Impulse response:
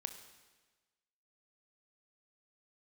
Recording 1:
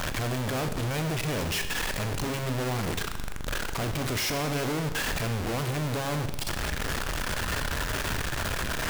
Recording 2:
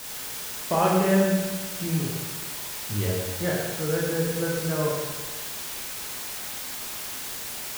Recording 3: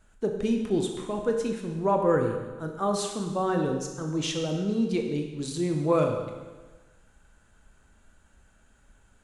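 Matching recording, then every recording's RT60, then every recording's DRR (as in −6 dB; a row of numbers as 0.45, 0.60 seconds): 1; 1.3, 1.3, 1.3 seconds; 7.5, −4.0, 3.0 decibels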